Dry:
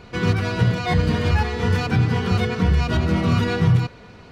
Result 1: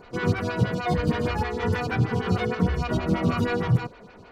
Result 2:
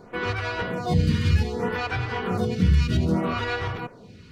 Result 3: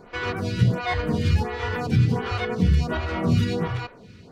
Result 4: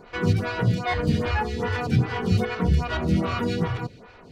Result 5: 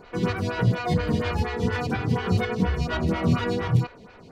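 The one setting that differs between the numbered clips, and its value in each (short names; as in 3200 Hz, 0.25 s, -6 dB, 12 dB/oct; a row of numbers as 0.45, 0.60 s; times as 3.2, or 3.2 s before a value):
photocell phaser, rate: 6.4, 0.64, 1.4, 2.5, 4.2 Hz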